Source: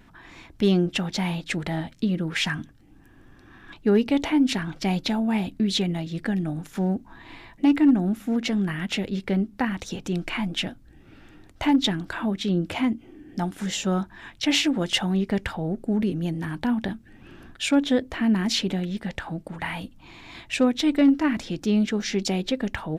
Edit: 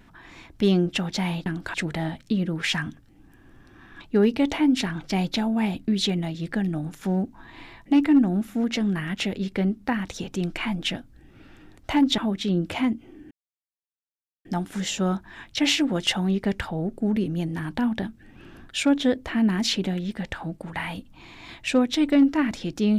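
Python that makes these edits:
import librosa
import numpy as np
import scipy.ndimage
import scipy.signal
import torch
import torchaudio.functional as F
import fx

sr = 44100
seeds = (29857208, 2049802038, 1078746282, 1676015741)

y = fx.edit(x, sr, fx.move(start_s=11.9, length_s=0.28, to_s=1.46),
    fx.insert_silence(at_s=13.31, length_s=1.14), tone=tone)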